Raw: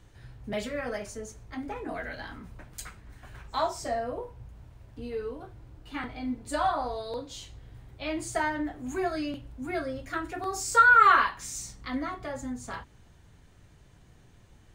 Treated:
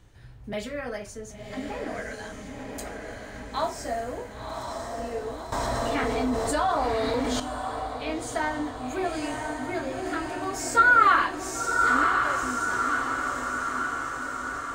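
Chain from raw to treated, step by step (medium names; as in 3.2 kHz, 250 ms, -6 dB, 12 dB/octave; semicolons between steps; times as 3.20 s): on a send: echo that smears into a reverb 1051 ms, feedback 65%, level -3.5 dB; 5.52–7.40 s: on the sum: level flattener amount 70%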